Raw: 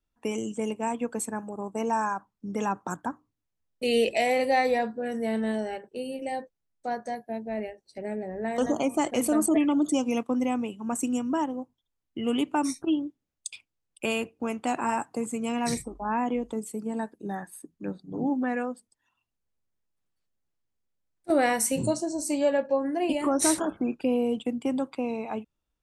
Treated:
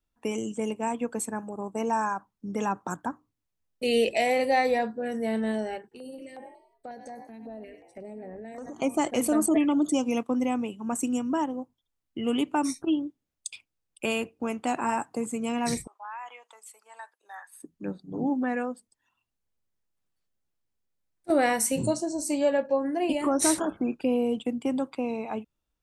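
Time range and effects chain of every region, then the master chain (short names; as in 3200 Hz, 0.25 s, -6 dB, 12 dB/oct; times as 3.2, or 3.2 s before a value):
5.82–8.82 frequency-shifting echo 95 ms, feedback 40%, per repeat +40 Hz, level -14.5 dB + compressor, threshold -37 dBFS + stepped notch 5.5 Hz 580–6200 Hz
15.87–17.6 HPF 940 Hz 24 dB/oct + high shelf 3900 Hz -6.5 dB + compressor 4:1, threshold -36 dBFS
whole clip: dry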